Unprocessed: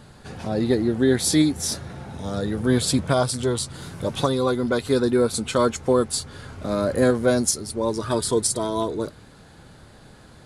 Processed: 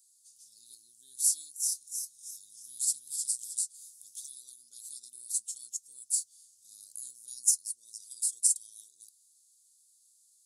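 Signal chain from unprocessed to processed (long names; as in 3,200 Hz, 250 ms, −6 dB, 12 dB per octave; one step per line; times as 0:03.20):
inverse Chebyshev high-pass filter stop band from 2,100 Hz, stop band 60 dB
0:01.50–0:03.61: feedback echo with a swinging delay time 314 ms, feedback 39%, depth 105 cents, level −5.5 dB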